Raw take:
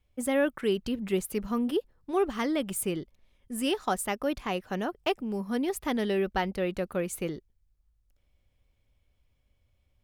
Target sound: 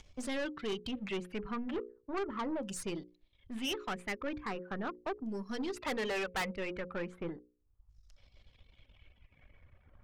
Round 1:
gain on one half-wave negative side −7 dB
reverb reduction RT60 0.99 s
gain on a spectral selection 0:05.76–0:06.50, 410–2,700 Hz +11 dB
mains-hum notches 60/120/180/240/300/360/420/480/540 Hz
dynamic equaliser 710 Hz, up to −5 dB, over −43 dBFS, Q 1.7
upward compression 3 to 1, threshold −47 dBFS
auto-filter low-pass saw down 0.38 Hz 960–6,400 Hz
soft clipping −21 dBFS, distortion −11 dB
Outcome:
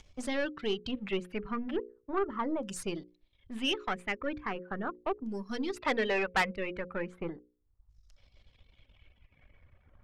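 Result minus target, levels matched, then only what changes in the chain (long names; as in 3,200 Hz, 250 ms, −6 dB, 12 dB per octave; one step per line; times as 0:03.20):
soft clipping: distortion −6 dB
change: soft clipping −31.5 dBFS, distortion −5 dB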